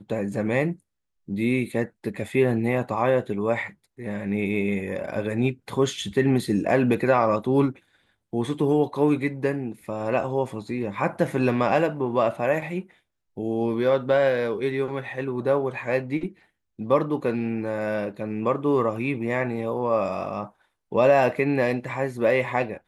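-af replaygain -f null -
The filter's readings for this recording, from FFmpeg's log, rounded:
track_gain = +4.3 dB
track_peak = 0.320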